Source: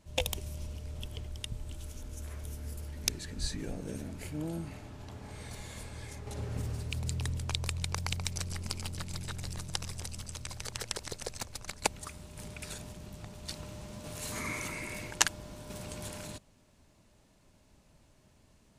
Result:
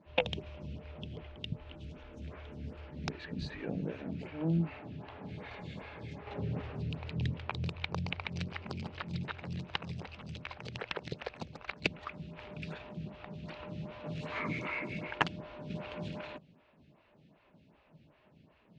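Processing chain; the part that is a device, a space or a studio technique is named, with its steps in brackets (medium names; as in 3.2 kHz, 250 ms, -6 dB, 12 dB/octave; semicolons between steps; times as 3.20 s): vibe pedal into a guitar amplifier (lamp-driven phase shifter 2.6 Hz; valve stage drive 15 dB, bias 0.7; cabinet simulation 82–3500 Hz, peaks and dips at 97 Hz -4 dB, 160 Hz +8 dB, 2.6 kHz +4 dB); trim +8.5 dB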